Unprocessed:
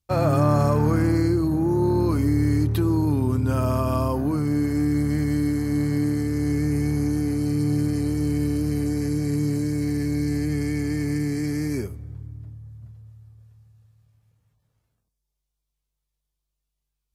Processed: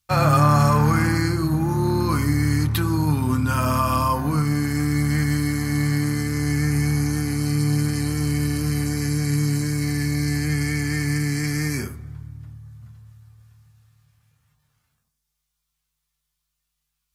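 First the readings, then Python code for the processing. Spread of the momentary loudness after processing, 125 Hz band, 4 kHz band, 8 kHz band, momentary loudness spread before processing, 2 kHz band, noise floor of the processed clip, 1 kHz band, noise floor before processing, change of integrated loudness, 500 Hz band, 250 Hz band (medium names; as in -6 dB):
5 LU, +3.0 dB, +9.0 dB, +9.0 dB, 6 LU, +9.5 dB, -79 dBFS, +7.0 dB, -81 dBFS, +1.5 dB, -2.5 dB, -1.0 dB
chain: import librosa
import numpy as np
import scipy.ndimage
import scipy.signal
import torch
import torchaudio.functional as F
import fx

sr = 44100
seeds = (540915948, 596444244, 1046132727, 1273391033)

y = fx.curve_eq(x, sr, hz=(240.0, 440.0, 1300.0), db=(0, -6, 9))
y = fx.rev_fdn(y, sr, rt60_s=0.54, lf_ratio=1.0, hf_ratio=0.35, size_ms=39.0, drr_db=6.5)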